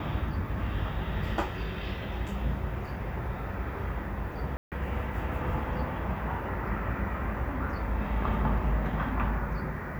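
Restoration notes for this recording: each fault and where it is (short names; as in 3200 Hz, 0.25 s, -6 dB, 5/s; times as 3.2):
4.57–4.72 gap 0.148 s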